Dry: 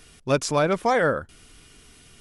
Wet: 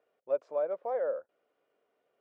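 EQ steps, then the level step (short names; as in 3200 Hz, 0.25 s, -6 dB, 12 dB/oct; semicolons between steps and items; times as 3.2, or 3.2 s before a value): ladder band-pass 600 Hz, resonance 70%; -5.5 dB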